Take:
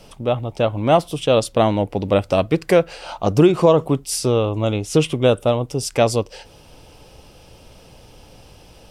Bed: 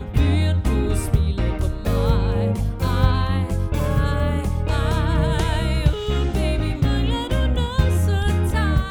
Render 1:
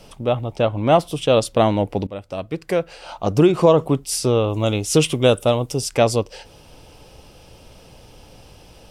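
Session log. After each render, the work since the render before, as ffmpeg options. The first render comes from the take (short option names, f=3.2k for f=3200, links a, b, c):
-filter_complex "[0:a]asettb=1/sr,asplit=3[a][b][c];[a]atrim=end=0.564[d];[b]atrim=start=0.56:end=0.99,asetpts=PTS-STARTPTS,afade=t=in:d=0.004:c=qsin,afade=t=out:st=0.426:d=0.004:c=qsin,highshelf=f=10k:g=-8.5[e];[c]atrim=start=0.986[f];[d][e]acrossfade=d=0.004:c1=hsin:c2=qsin[g];[g][f]acrossfade=d=0.004:c1=qsin:c2=hsin,asettb=1/sr,asplit=3[h][i][j];[h]atrim=end=4.494[k];[i]atrim=start=4.49:end=5.81,asetpts=PTS-STARTPTS,afade=t=in:d=0.004:c=qsin,afade=t=out:st=1.316:d=0.004:c=qsin,highshelf=f=3.9k:g=9[l];[j]atrim=start=5.806[m];[k][l]acrossfade=d=0.004:c1=hsin:c2=qsin[n];[n][m]acrossfade=d=0.004:c1=qsin:c2=hsin,asplit=2[o][p];[o]atrim=end=2.07,asetpts=PTS-STARTPTS,afade=t=out:st=2.066:d=0.004:c=hsin:silence=0.125893[q];[p]atrim=start=2.07,asetpts=PTS-STARTPTS,afade=t=in:d=1.61:silence=0.125893[r];[q][r]concat=n=2:v=0:a=1"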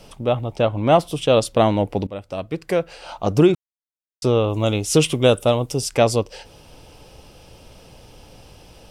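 -filter_complex "[0:a]asplit=3[a][b][c];[a]atrim=end=3.55,asetpts=PTS-STARTPTS,afade=t=out:st=3.546:d=0.004:c=hsin[d];[b]atrim=start=3.55:end=4.22,asetpts=PTS-STARTPTS,volume=0[e];[c]atrim=start=4.22,asetpts=PTS-STARTPTS,afade=t=in:d=0.004:c=hsin[f];[d][e][f]concat=n=3:v=0:a=1"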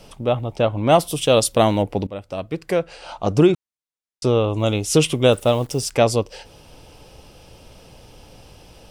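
-filter_complex "[0:a]asettb=1/sr,asplit=3[a][b][c];[a]atrim=end=0.894[d];[b]atrim=start=0.89:end=1.83,asetpts=PTS-STARTPTS,afade=t=in:d=0.004:c=qsin,afade=t=out:st=0.936:d=0.004:c=qsin,aemphasis=mode=production:type=50kf[e];[c]atrim=start=1.826[f];[d][e]acrossfade=d=0.004:c1=hsin:c2=qsin[g];[g][f]acrossfade=d=0.004:c1=qsin:c2=hsin,asettb=1/sr,asplit=3[h][i][j];[h]atrim=end=2.804[k];[i]atrim=start=2.8:end=4.58,asetpts=PTS-STARTPTS,afade=t=in:d=0.004:c=qsin,afade=t=out:st=1.776:d=0.004:c=qsin,lowpass=f=11k:w=0.5412,lowpass=f=11k:w=1.3066[l];[j]atrim=start=4.576[m];[k][l]acrossfade=d=0.004:c1=hsin:c2=qsin[n];[n][m]acrossfade=d=0.004:c1=qsin:c2=hsin,asettb=1/sr,asplit=3[o][p][q];[o]atrim=end=5.324[r];[p]atrim=start=5.32:end=5.91,asetpts=PTS-STARTPTS,afade=t=in:d=0.004:c=qsin,afade=t=out:st=0.586:d=0.004:c=qsin,acrusher=bits=8:dc=4:mix=0:aa=0.000001[s];[q]atrim=start=5.906[t];[r][s]acrossfade=d=0.004:c1=hsin:c2=qsin[u];[u][t]acrossfade=d=0.004:c1=qsin:c2=hsin"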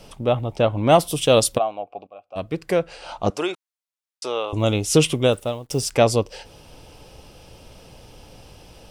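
-filter_complex "[0:a]asplit=3[a][b][c];[a]afade=t=out:st=1.57:d=0.02[d];[b]asplit=3[e][f][g];[e]bandpass=f=730:t=q:w=8,volume=0dB[h];[f]bandpass=f=1.09k:t=q:w=8,volume=-6dB[i];[g]bandpass=f=2.44k:t=q:w=8,volume=-9dB[j];[h][i][j]amix=inputs=3:normalize=0,afade=t=in:st=1.57:d=0.02,afade=t=out:st=2.35:d=0.02[k];[c]afade=t=in:st=2.35:d=0.02[l];[d][k][l]amix=inputs=3:normalize=0,asettb=1/sr,asplit=3[m][n][o];[m]atrim=end=3.304[p];[n]atrim=start=3.3:end=4.53,asetpts=PTS-STARTPTS,afade=t=in:d=0.004:c=qsin,afade=t=out:st=1.226:d=0.004:c=qsin,highpass=700[q];[o]atrim=start=4.526[r];[p][q]acrossfade=d=0.004:c1=hsin:c2=qsin[s];[s][r]acrossfade=d=0.004:c1=qsin:c2=hsin,asplit=2[t][u];[t]atrim=end=5.7,asetpts=PTS-STARTPTS,afade=t=out:st=5.07:d=0.63:silence=0.0707946[v];[u]atrim=start=5.7,asetpts=PTS-STARTPTS,afade=t=in:d=0.004:c=hsin:silence=0.0707946[w];[v][w]concat=n=2:v=0:a=1"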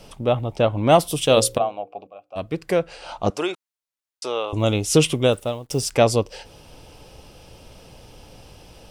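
-filter_complex "[0:a]asettb=1/sr,asplit=3[a][b][c];[a]atrim=end=1.224[d];[b]atrim=start=1.22:end=2.42,asetpts=PTS-STARTPTS,afade=t=in:d=0.004:c=qsin,afade=t=out:st=1.196:d=0.004:c=qsin,bandreject=f=60:t=h:w=6,bandreject=f=120:t=h:w=6,bandreject=f=180:t=h:w=6,bandreject=f=240:t=h:w=6,bandreject=f=300:t=h:w=6,bandreject=f=360:t=h:w=6,bandreject=f=420:t=h:w=6,bandreject=f=480:t=h:w=6,bandreject=f=540:t=h:w=6[e];[c]atrim=start=2.416[f];[d][e]acrossfade=d=0.004:c1=hsin:c2=qsin[g];[g][f]acrossfade=d=0.004:c1=qsin:c2=hsin"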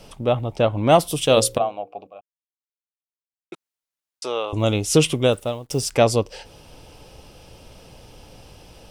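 -filter_complex "[0:a]asplit=3[a][b][c];[a]atrim=end=2.21,asetpts=PTS-STARTPTS,afade=t=out:st=2.206:d=0.004:c=hsin[d];[b]atrim=start=2.21:end=3.52,asetpts=PTS-STARTPTS,volume=0[e];[c]atrim=start=3.52,asetpts=PTS-STARTPTS,afade=t=in:d=0.004:c=hsin[f];[d][e][f]concat=n=3:v=0:a=1"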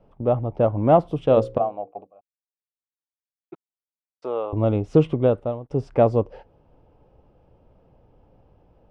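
-af "agate=range=-10dB:threshold=-37dB:ratio=16:detection=peak,lowpass=1k"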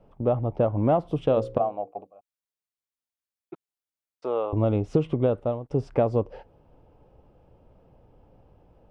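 -af "acompressor=threshold=-18dB:ratio=6"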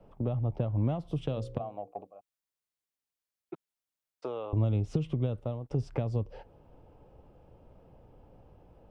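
-filter_complex "[0:a]acrossover=split=170|3000[a][b][c];[b]acompressor=threshold=-34dB:ratio=10[d];[a][d][c]amix=inputs=3:normalize=0"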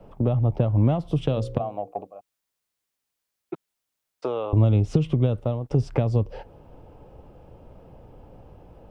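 -af "volume=9dB"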